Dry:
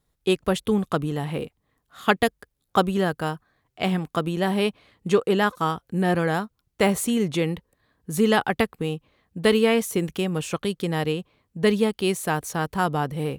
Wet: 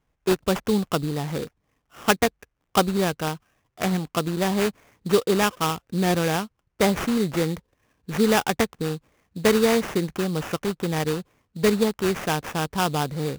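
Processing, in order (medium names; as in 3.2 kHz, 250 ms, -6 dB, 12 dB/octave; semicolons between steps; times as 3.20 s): sample-rate reducer 4.2 kHz, jitter 20%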